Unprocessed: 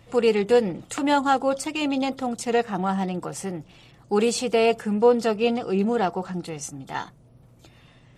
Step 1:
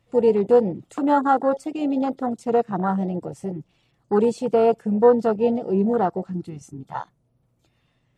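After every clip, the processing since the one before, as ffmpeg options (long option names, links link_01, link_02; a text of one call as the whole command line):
ffmpeg -i in.wav -af "afwtdn=0.0631,volume=2.5dB" out.wav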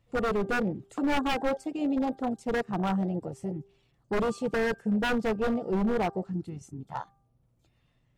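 ffmpeg -i in.wav -af "aeval=exprs='0.15*(abs(mod(val(0)/0.15+3,4)-2)-1)':channel_layout=same,lowshelf=frequency=82:gain=10,bandreject=frequency=396.1:width_type=h:width=4,bandreject=frequency=792.2:width_type=h:width=4,bandreject=frequency=1188.3:width_type=h:width=4,bandreject=frequency=1584.4:width_type=h:width=4,volume=-5.5dB" out.wav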